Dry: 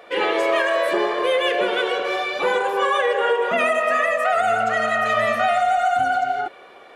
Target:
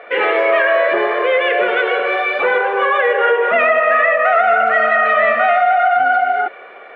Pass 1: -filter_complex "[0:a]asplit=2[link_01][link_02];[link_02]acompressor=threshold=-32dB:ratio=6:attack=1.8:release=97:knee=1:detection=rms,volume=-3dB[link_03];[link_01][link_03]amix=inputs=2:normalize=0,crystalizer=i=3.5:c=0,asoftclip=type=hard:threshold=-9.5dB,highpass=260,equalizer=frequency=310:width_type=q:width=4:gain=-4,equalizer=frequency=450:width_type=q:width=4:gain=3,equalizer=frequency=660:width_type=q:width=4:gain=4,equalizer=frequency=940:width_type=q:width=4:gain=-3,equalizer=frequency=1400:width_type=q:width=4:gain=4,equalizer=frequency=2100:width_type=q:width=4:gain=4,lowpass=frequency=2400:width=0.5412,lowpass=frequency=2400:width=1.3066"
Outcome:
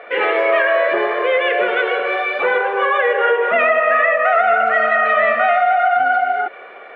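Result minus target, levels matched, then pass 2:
downward compressor: peak gain reduction +9 dB
-filter_complex "[0:a]asplit=2[link_01][link_02];[link_02]acompressor=threshold=-21dB:ratio=6:attack=1.8:release=97:knee=1:detection=rms,volume=-3dB[link_03];[link_01][link_03]amix=inputs=2:normalize=0,crystalizer=i=3.5:c=0,asoftclip=type=hard:threshold=-9.5dB,highpass=260,equalizer=frequency=310:width_type=q:width=4:gain=-4,equalizer=frequency=450:width_type=q:width=4:gain=3,equalizer=frequency=660:width_type=q:width=4:gain=4,equalizer=frequency=940:width_type=q:width=4:gain=-3,equalizer=frequency=1400:width_type=q:width=4:gain=4,equalizer=frequency=2100:width_type=q:width=4:gain=4,lowpass=frequency=2400:width=0.5412,lowpass=frequency=2400:width=1.3066"

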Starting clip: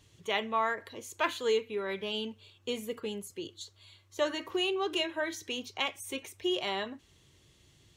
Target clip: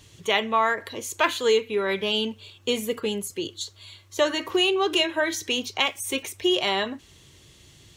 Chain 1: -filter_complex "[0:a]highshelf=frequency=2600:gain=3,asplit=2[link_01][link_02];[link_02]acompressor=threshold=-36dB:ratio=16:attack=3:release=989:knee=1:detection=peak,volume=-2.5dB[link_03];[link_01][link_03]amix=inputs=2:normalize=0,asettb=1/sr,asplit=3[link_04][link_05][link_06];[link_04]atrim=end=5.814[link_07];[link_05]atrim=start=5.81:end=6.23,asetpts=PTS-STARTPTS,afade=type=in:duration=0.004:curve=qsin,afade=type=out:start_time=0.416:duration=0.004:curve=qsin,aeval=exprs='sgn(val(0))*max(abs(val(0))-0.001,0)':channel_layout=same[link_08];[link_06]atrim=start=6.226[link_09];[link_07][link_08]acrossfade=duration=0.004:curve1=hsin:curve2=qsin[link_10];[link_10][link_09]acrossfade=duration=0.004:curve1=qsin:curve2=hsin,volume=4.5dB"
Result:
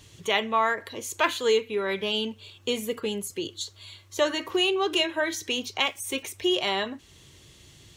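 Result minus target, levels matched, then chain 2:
downward compressor: peak gain reduction +9.5 dB
-filter_complex "[0:a]highshelf=frequency=2600:gain=3,asplit=2[link_01][link_02];[link_02]acompressor=threshold=-26dB:ratio=16:attack=3:release=989:knee=1:detection=peak,volume=-2.5dB[link_03];[link_01][link_03]amix=inputs=2:normalize=0,asettb=1/sr,asplit=3[link_04][link_05][link_06];[link_04]atrim=end=5.814[link_07];[link_05]atrim=start=5.81:end=6.23,asetpts=PTS-STARTPTS,afade=type=in:duration=0.004:curve=qsin,afade=type=out:start_time=0.416:duration=0.004:curve=qsin,aeval=exprs='sgn(val(0))*max(abs(val(0))-0.001,0)':channel_layout=same[link_08];[link_06]atrim=start=6.226[link_09];[link_07][link_08]acrossfade=duration=0.004:curve1=hsin:curve2=qsin[link_10];[link_10][link_09]acrossfade=duration=0.004:curve1=qsin:curve2=hsin,volume=4.5dB"

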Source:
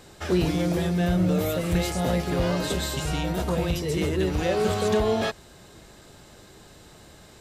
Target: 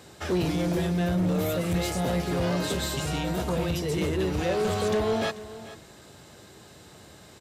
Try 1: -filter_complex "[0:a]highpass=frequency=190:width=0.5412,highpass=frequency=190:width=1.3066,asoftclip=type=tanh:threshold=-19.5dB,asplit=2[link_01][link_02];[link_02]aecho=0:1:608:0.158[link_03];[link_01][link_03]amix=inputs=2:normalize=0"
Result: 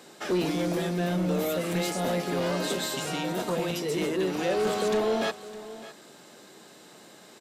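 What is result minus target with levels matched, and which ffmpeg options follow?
echo 168 ms late; 125 Hz band −4.5 dB
-filter_complex "[0:a]highpass=frequency=67:width=0.5412,highpass=frequency=67:width=1.3066,asoftclip=type=tanh:threshold=-19.5dB,asplit=2[link_01][link_02];[link_02]aecho=0:1:440:0.158[link_03];[link_01][link_03]amix=inputs=2:normalize=0"

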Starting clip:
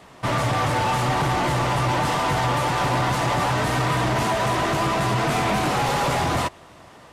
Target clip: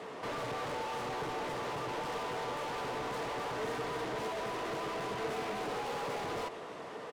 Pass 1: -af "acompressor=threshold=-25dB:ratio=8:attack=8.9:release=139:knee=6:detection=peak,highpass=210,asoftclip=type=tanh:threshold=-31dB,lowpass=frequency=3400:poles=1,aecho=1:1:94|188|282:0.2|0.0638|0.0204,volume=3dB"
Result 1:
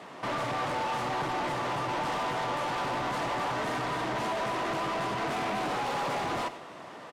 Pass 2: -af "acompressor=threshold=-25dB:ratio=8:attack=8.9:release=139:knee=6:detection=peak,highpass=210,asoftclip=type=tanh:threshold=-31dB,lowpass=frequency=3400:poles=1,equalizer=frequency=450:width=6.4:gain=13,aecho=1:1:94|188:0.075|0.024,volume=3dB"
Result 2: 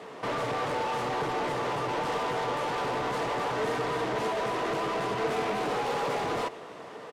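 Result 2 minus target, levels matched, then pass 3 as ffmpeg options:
soft clipping: distortion −5 dB
-af "acompressor=threshold=-25dB:ratio=8:attack=8.9:release=139:knee=6:detection=peak,highpass=210,asoftclip=type=tanh:threshold=-40dB,lowpass=frequency=3400:poles=1,equalizer=frequency=450:width=6.4:gain=13,aecho=1:1:94|188:0.075|0.024,volume=3dB"

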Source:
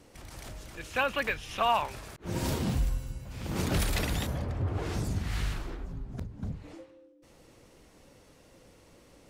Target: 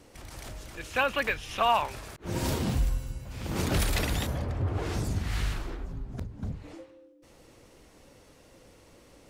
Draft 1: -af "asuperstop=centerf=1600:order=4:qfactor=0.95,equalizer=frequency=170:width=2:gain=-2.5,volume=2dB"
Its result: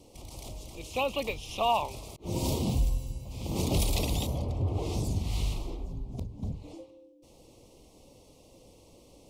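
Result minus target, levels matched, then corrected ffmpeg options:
2,000 Hz band −7.5 dB
-af "equalizer=frequency=170:width=2:gain=-2.5,volume=2dB"

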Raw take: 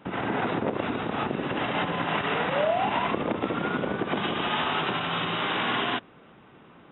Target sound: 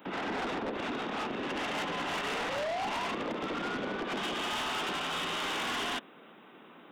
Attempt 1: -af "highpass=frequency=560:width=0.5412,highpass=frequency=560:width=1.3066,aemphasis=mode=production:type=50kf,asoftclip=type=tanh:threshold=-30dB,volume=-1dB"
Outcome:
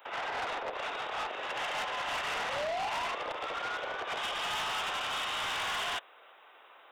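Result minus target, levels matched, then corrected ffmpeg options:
250 Hz band −15.0 dB
-af "highpass=frequency=200:width=0.5412,highpass=frequency=200:width=1.3066,aemphasis=mode=production:type=50kf,asoftclip=type=tanh:threshold=-30dB,volume=-1dB"

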